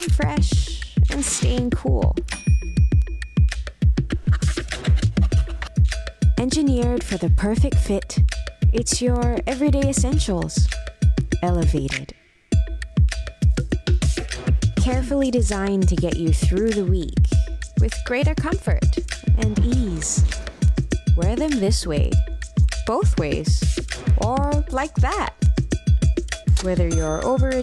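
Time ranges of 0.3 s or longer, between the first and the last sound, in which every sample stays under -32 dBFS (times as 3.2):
12.12–12.52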